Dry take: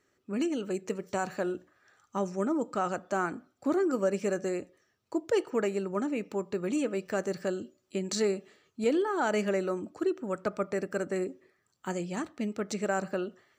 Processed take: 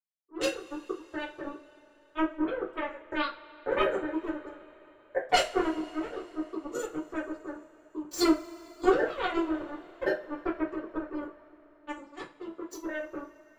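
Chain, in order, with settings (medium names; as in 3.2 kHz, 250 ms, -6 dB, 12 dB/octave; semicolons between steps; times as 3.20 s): resonances exaggerated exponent 2; formant-preserving pitch shift +8 st; power-law waveshaper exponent 3; reverberation, pre-delay 3 ms, DRR -8 dB; trim +5 dB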